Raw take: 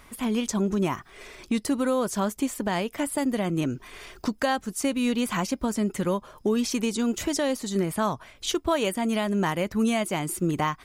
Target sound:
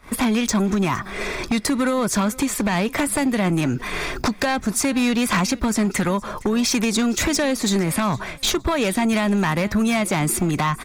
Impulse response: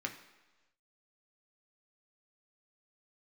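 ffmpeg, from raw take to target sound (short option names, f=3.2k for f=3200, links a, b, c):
-filter_complex "[0:a]acrossover=split=220[a][b];[b]acompressor=threshold=-29dB:ratio=10[c];[a][c]amix=inputs=2:normalize=0,agate=range=-21dB:threshold=-50dB:ratio=16:detection=peak,acrossover=split=1100[d][e];[d]acompressor=threshold=-36dB:ratio=5[f];[e]highshelf=f=5.1k:g=-8[g];[f][g]amix=inputs=2:normalize=0,aeval=exprs='0.168*sin(PI/2*5.01*val(0)/0.168)':c=same,bandreject=f=3k:w=8.4,asplit=2[h][i];[i]aecho=0:1:463|926:0.0891|0.0258[j];[h][j]amix=inputs=2:normalize=0,volume=1dB"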